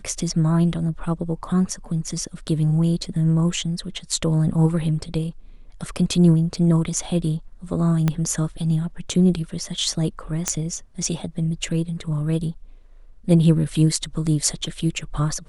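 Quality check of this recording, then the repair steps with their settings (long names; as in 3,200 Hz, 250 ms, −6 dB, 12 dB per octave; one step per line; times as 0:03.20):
0:08.08: click −8 dBFS
0:10.48: click −6 dBFS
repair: click removal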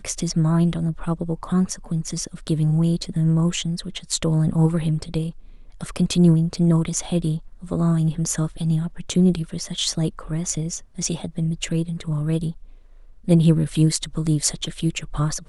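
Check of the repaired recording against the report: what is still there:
0:08.08: click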